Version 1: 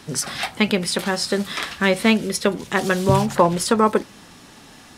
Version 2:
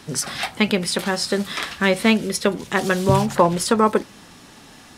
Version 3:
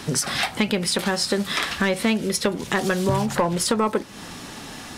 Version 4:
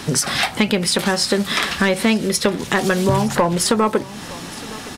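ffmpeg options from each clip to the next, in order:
ffmpeg -i in.wav -af anull out.wav
ffmpeg -i in.wav -af "asoftclip=type=tanh:threshold=-8.5dB,acompressor=threshold=-30dB:ratio=3,volume=8dB" out.wav
ffmpeg -i in.wav -af "aecho=1:1:916:0.106,volume=4.5dB" out.wav

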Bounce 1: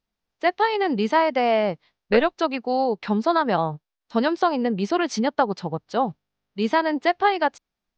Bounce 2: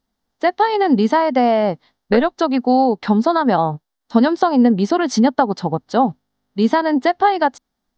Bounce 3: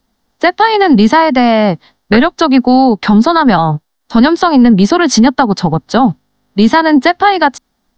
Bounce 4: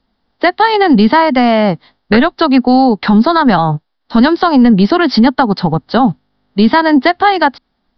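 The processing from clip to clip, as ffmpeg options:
ffmpeg -i in.wav -af "acompressor=threshold=-21dB:ratio=2.5,equalizer=frequency=250:width_type=o:width=0.33:gain=9,equalizer=frequency=800:width_type=o:width=0.33:gain=4,equalizer=frequency=2500:width_type=o:width=0.33:gain=-11,volume=7dB" out.wav
ffmpeg -i in.wav -filter_complex "[0:a]acrossover=split=320|910|1100[link_01][link_02][link_03][link_04];[link_02]acompressor=threshold=-27dB:ratio=20[link_05];[link_01][link_05][link_03][link_04]amix=inputs=4:normalize=0,apsyclip=13.5dB,volume=-1.5dB" out.wav
ffmpeg -i in.wav -af "aresample=11025,aresample=44100,volume=-1dB" out.wav

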